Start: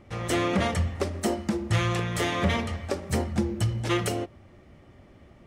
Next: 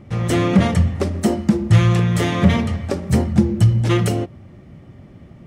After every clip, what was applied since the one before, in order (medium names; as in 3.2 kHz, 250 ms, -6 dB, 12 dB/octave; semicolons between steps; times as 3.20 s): peaking EQ 150 Hz +12 dB 1.7 oct; trim +3.5 dB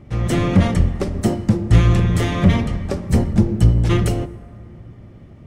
octave divider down 1 oct, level -1 dB; plate-style reverb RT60 3.2 s, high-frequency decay 0.35×, pre-delay 0 ms, DRR 17 dB; trim -2 dB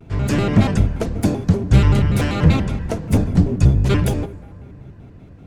vibrato with a chosen wave square 5.2 Hz, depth 250 cents